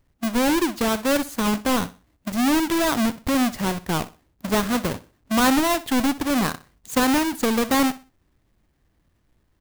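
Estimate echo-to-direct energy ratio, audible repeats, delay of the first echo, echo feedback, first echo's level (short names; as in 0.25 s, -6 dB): -16.5 dB, 2, 62 ms, 29%, -17.0 dB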